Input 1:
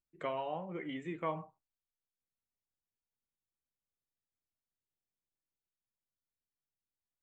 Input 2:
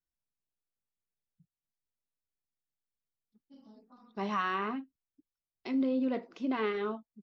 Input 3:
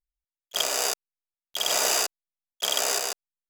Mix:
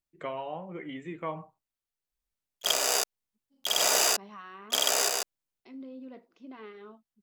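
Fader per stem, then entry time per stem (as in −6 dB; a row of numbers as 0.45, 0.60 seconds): +1.5, −14.0, −0.5 decibels; 0.00, 0.00, 2.10 seconds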